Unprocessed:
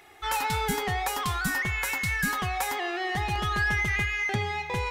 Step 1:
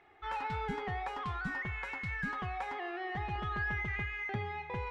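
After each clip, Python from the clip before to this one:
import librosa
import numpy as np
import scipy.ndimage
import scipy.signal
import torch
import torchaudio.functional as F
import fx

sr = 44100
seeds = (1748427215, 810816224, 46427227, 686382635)

y = scipy.signal.sosfilt(scipy.signal.butter(2, 2200.0, 'lowpass', fs=sr, output='sos'), x)
y = F.gain(torch.from_numpy(y), -8.0).numpy()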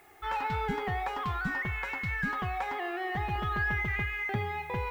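y = fx.dmg_noise_colour(x, sr, seeds[0], colour='blue', level_db=-71.0)
y = F.gain(torch.from_numpy(y), 5.0).numpy()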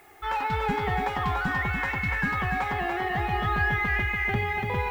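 y = fx.echo_feedback(x, sr, ms=289, feedback_pct=43, wet_db=-4.5)
y = F.gain(torch.from_numpy(y), 4.0).numpy()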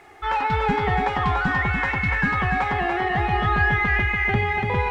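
y = fx.air_absorb(x, sr, metres=65.0)
y = F.gain(torch.from_numpy(y), 5.5).numpy()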